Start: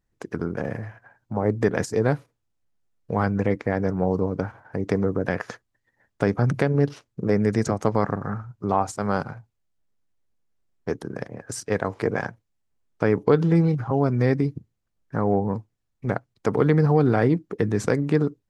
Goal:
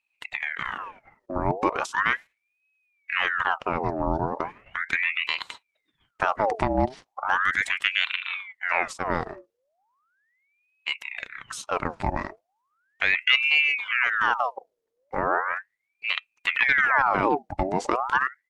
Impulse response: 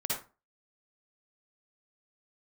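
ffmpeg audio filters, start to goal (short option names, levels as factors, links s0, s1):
-af "asetrate=39289,aresample=44100,atempo=1.12246,aeval=exprs='val(0)*sin(2*PI*1500*n/s+1500*0.7/0.37*sin(2*PI*0.37*n/s))':c=same"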